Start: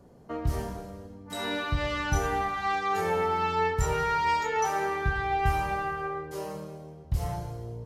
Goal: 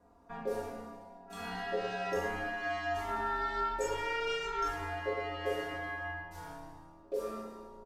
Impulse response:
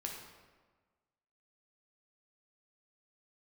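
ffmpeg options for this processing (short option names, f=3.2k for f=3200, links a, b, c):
-filter_complex "[0:a]aecho=1:1:4.3:0.78,aeval=exprs='val(0)*sin(2*PI*480*n/s)':c=same[a];[1:a]atrim=start_sample=2205,asetrate=88200,aresample=44100[b];[a][b]afir=irnorm=-1:irlink=0,volume=-1dB"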